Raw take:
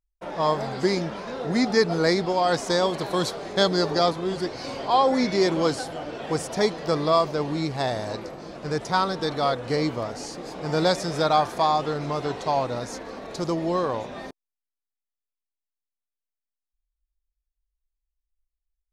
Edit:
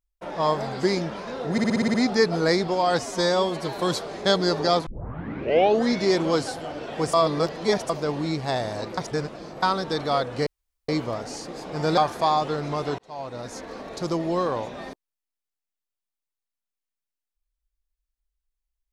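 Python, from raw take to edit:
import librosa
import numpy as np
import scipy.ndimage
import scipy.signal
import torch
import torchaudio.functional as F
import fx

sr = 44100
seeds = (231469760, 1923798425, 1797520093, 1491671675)

y = fx.edit(x, sr, fx.stutter(start_s=1.52, slice_s=0.06, count=8),
    fx.stretch_span(start_s=2.57, length_s=0.53, factor=1.5),
    fx.tape_start(start_s=4.18, length_s=1.07),
    fx.reverse_span(start_s=6.45, length_s=0.76),
    fx.reverse_span(start_s=8.29, length_s=0.65),
    fx.insert_room_tone(at_s=9.78, length_s=0.42),
    fx.cut(start_s=10.87, length_s=0.48),
    fx.fade_in_span(start_s=12.36, length_s=0.73), tone=tone)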